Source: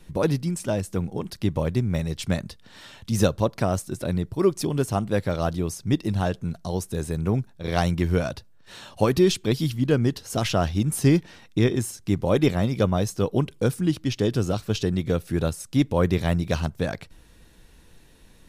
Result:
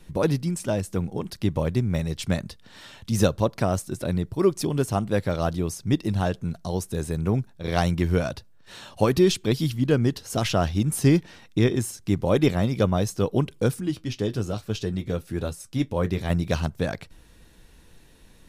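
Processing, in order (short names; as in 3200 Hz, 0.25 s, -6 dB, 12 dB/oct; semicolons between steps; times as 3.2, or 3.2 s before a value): 13.8–16.3 flange 1.1 Hz, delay 8.7 ms, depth 1.2 ms, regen -55%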